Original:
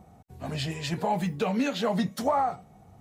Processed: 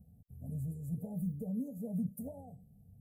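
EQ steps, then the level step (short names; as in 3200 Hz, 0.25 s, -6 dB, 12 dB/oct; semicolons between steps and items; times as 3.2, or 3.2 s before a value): inverse Chebyshev band-stop 1100–4700 Hz, stop band 60 dB; fixed phaser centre 850 Hz, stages 4; -2.5 dB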